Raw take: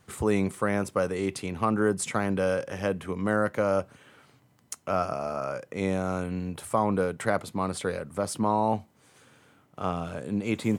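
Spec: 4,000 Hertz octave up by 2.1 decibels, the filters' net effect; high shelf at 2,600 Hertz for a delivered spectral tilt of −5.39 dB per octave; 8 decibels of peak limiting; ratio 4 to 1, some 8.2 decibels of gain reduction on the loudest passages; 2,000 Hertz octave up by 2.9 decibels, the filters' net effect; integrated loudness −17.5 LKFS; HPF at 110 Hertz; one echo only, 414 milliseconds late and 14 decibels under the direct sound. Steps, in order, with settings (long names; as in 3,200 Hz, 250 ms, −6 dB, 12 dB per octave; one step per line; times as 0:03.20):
high-pass filter 110 Hz
parametric band 2,000 Hz +6 dB
high-shelf EQ 2,600 Hz −9 dB
parametric band 4,000 Hz +8.5 dB
downward compressor 4 to 1, threshold −29 dBFS
brickwall limiter −24 dBFS
single-tap delay 414 ms −14 dB
level +18.5 dB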